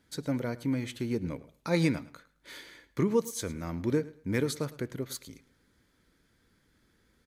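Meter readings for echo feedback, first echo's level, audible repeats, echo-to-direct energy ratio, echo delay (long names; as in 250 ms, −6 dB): 23%, −19.0 dB, 2, −19.0 dB, 108 ms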